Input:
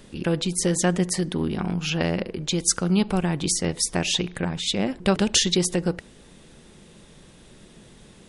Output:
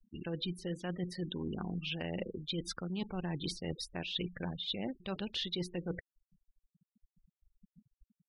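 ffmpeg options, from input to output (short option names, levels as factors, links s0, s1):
-af "afftfilt=real='re*gte(hypot(re,im),0.0398)':imag='im*gte(hypot(re,im),0.0398)':win_size=1024:overlap=0.75,highshelf=f=5200:t=q:w=3:g=-12.5,areverse,acompressor=threshold=0.0398:ratio=16,areverse,volume=0.501"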